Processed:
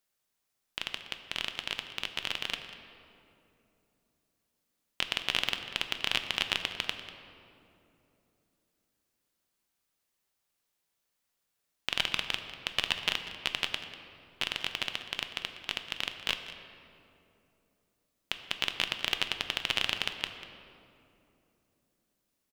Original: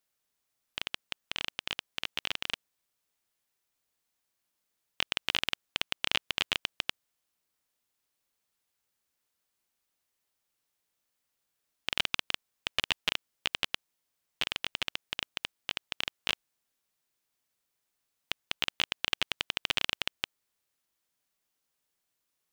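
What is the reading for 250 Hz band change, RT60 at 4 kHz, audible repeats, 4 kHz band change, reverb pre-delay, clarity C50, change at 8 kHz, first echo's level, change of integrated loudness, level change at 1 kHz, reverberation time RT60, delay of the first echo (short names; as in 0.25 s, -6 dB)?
+1.0 dB, 1.6 s, 1, +0.5 dB, 5 ms, 8.0 dB, +0.5 dB, -15.5 dB, +0.5 dB, +1.0 dB, 3.0 s, 0.193 s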